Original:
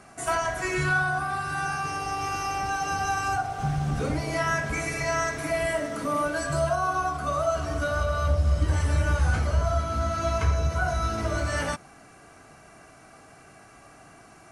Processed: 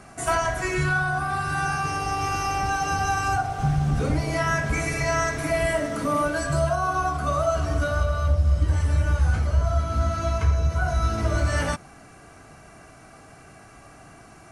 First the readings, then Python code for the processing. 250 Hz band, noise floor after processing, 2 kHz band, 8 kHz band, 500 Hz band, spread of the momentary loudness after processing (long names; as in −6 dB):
+3.0 dB, −48 dBFS, +1.5 dB, +2.0 dB, +1.5 dB, 3 LU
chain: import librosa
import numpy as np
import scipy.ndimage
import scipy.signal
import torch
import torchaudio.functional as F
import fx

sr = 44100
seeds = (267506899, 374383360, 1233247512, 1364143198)

y = fx.low_shelf(x, sr, hz=150.0, db=7.0)
y = fx.rider(y, sr, range_db=3, speed_s=0.5)